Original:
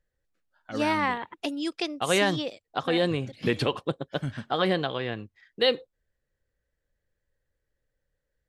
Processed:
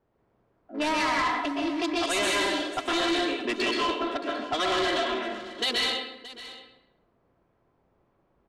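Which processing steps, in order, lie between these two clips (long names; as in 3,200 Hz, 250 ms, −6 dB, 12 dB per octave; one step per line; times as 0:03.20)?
adaptive Wiener filter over 41 samples
Chebyshev high-pass filter 200 Hz, order 6
spectral tilt +3 dB per octave
comb filter 3 ms, depth 98%
in parallel at −10 dB: bit-depth reduction 8 bits, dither triangular
on the sum: low-pass that shuts in the quiet parts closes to 580 Hz, open at −18.5 dBFS
dense smooth reverb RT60 0.85 s, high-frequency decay 0.75×, pre-delay 110 ms, DRR −2.5 dB
brickwall limiter −10 dBFS, peak gain reduction 6.5 dB
soft clipping −22 dBFS, distortion −9 dB
low-pass filter 8,500 Hz 12 dB per octave
on a send: single-tap delay 623 ms −16 dB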